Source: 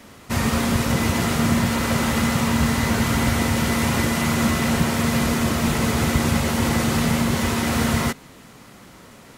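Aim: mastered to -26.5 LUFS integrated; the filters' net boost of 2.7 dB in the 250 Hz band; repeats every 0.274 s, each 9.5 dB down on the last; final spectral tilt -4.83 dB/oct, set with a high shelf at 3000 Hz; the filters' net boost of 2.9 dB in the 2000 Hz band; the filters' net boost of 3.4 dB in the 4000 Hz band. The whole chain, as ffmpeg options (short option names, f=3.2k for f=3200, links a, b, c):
-af "equalizer=f=250:t=o:g=3,equalizer=f=2k:t=o:g=3.5,highshelf=f=3k:g=-5.5,equalizer=f=4k:t=o:g=7.5,aecho=1:1:274|548|822|1096:0.335|0.111|0.0365|0.012,volume=-7.5dB"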